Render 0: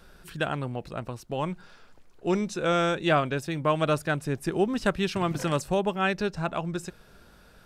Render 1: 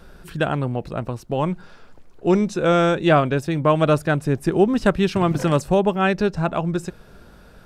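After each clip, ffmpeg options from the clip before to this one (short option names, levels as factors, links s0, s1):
-af "tiltshelf=f=1200:g=3.5,volume=1.88"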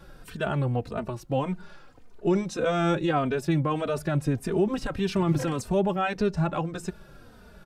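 -filter_complex "[0:a]alimiter=limit=0.224:level=0:latency=1:release=28,asplit=2[s0][s1];[s1]adelay=3.1,afreqshift=-1.7[s2];[s0][s2]amix=inputs=2:normalize=1"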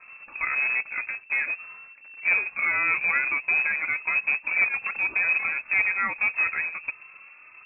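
-af "acrusher=bits=2:mode=log:mix=0:aa=0.000001,lowpass=f=2300:t=q:w=0.5098,lowpass=f=2300:t=q:w=0.6013,lowpass=f=2300:t=q:w=0.9,lowpass=f=2300:t=q:w=2.563,afreqshift=-2700"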